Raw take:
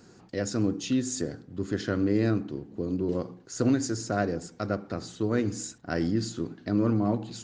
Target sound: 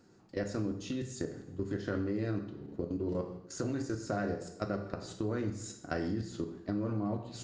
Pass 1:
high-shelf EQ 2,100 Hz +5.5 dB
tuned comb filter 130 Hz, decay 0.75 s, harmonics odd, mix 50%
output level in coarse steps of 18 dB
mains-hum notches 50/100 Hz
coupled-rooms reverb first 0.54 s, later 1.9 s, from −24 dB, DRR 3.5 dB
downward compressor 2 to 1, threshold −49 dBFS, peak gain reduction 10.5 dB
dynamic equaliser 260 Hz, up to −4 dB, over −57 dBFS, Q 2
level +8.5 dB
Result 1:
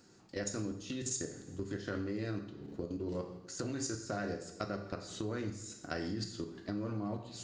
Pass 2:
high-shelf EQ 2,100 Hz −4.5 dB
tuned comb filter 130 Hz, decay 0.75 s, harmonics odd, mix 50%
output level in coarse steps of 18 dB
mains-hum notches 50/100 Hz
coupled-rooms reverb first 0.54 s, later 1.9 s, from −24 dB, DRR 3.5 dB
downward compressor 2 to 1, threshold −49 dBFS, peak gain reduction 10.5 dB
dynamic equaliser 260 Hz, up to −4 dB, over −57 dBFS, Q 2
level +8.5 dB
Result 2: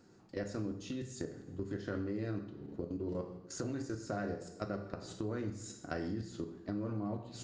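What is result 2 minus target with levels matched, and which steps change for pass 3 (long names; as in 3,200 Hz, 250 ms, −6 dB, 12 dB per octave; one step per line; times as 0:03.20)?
downward compressor: peak gain reduction +4 dB
change: downward compressor 2 to 1, threshold −41 dBFS, peak gain reduction 6.5 dB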